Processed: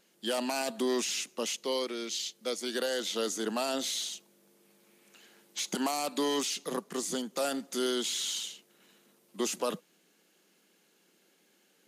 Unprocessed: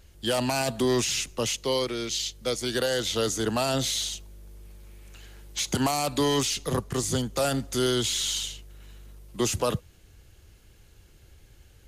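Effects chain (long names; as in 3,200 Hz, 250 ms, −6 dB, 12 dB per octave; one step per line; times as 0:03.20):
linear-phase brick-wall high-pass 170 Hz
level −5.5 dB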